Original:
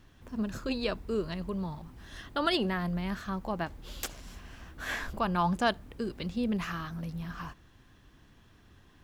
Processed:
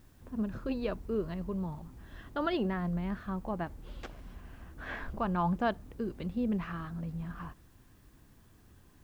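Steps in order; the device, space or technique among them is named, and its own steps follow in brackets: cassette deck with a dirty head (tape spacing loss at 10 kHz 35 dB; wow and flutter 21 cents; white noise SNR 35 dB)

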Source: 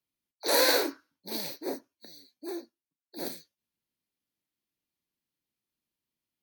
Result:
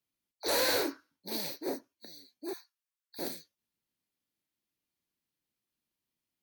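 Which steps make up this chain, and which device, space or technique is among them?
2.53–3.19 steep high-pass 1000 Hz 36 dB/oct; saturation between pre-emphasis and de-emphasis (high shelf 7300 Hz +7 dB; soft clip -22 dBFS, distortion -9 dB; high shelf 7300 Hz -7 dB)

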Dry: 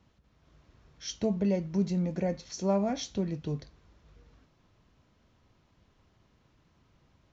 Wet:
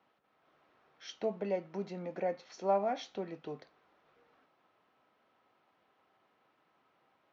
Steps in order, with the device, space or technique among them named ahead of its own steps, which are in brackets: tin-can telephone (BPF 450–2700 Hz; small resonant body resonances 770/1300 Hz, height 7 dB)

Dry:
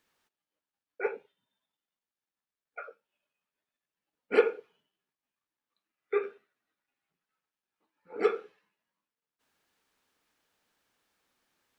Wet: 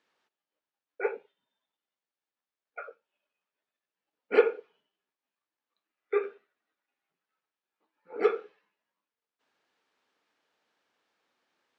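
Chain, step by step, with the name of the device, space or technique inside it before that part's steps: filter by subtraction (in parallel: LPF 460 Hz 12 dB/oct + phase invert); on the sum: LPF 5000 Hz 12 dB/oct

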